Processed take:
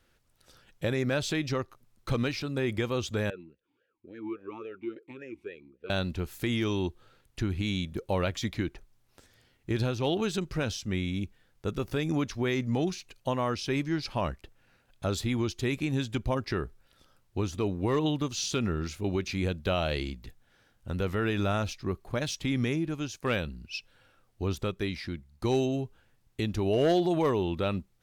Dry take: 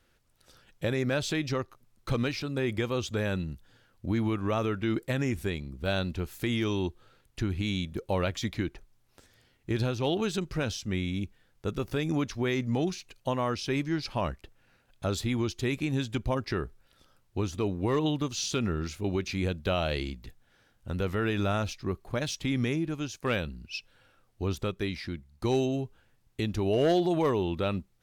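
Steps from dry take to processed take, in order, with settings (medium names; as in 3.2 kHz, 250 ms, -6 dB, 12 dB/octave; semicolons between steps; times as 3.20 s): 3.30–5.90 s: talking filter e-u 3.6 Hz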